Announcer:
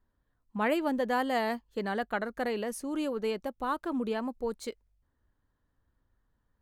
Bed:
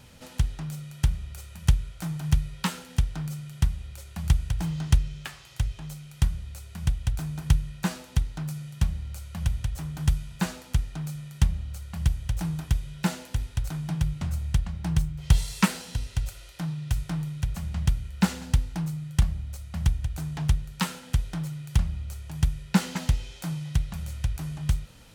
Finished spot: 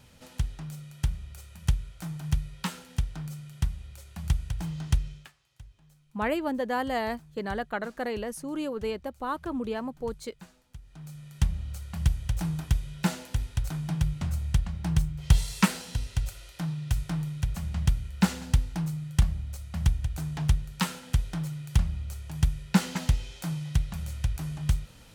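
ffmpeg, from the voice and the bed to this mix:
ffmpeg -i stem1.wav -i stem2.wav -filter_complex "[0:a]adelay=5600,volume=0dB[link_01];[1:a]volume=16.5dB,afade=type=out:start_time=5.09:duration=0.24:silence=0.141254,afade=type=in:start_time=10.81:duration=0.89:silence=0.0891251[link_02];[link_01][link_02]amix=inputs=2:normalize=0" out.wav

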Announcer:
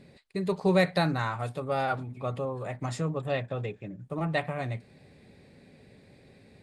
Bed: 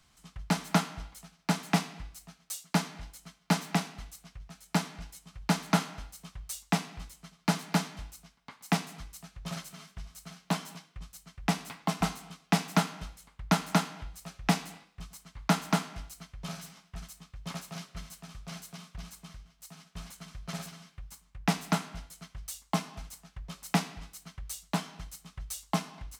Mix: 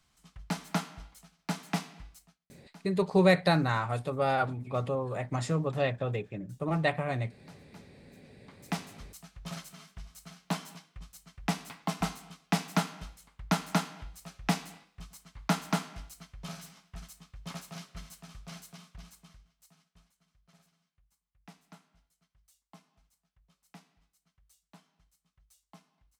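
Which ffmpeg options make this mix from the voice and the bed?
ffmpeg -i stem1.wav -i stem2.wav -filter_complex "[0:a]adelay=2500,volume=1dB[link_01];[1:a]volume=18.5dB,afade=type=out:start_time=2.13:duration=0.27:silence=0.0891251,afade=type=in:start_time=8.06:duration=1.08:silence=0.0630957,afade=type=out:start_time=18.41:duration=1.68:silence=0.0668344[link_02];[link_01][link_02]amix=inputs=2:normalize=0" out.wav

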